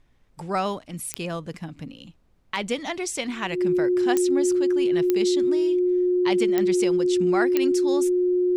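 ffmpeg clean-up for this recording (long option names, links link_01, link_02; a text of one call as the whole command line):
ffmpeg -i in.wav -af "adeclick=threshold=4,bandreject=frequency=360:width=30,agate=range=-21dB:threshold=-44dB" out.wav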